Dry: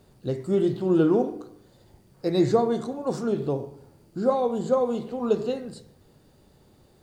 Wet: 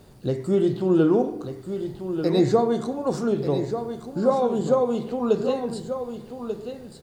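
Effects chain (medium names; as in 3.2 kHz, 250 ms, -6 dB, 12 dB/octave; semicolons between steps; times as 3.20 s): in parallel at +1 dB: compression, threshold -34 dBFS, peak gain reduction 17.5 dB; on the sum: delay 1189 ms -9 dB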